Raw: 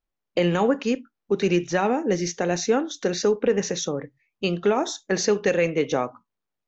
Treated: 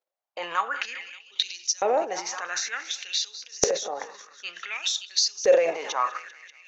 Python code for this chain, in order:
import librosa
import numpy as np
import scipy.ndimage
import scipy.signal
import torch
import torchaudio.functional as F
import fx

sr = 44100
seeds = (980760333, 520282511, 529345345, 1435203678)

y = fx.echo_heads(x, sr, ms=193, heads='all three', feedback_pct=42, wet_db=-23)
y = fx.transient(y, sr, attack_db=-5, sustain_db=10)
y = fx.filter_lfo_highpass(y, sr, shape='saw_up', hz=0.55, low_hz=500.0, high_hz=6100.0, q=4.8)
y = y * librosa.db_to_amplitude(-5.5)